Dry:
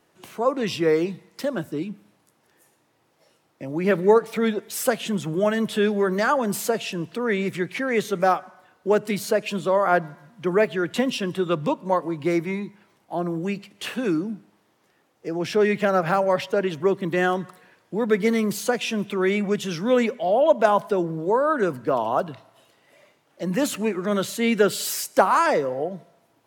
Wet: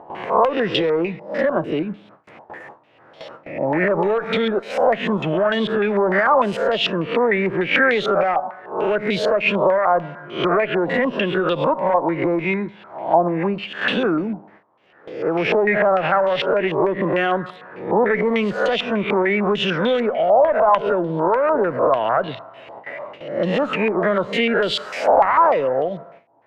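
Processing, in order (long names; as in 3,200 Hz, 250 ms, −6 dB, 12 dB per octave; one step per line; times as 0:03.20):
peak hold with a rise ahead of every peak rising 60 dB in 0.40 s
noise gate with hold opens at −48 dBFS
upward compression, threshold −35 dBFS
tube saturation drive 9 dB, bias 0.4
brickwall limiter −17 dBFS, peak gain reduction 9.5 dB
parametric band 600 Hz +7 dB 1 octave
downward compressor 4 to 1, threshold −24 dBFS, peak gain reduction 8.5 dB
low-pass on a step sequencer 6.7 Hz 880–3,400 Hz
level +6.5 dB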